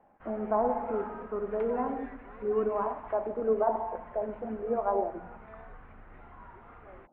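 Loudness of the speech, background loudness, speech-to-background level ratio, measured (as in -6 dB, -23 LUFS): -31.5 LUFS, -50.0 LUFS, 18.5 dB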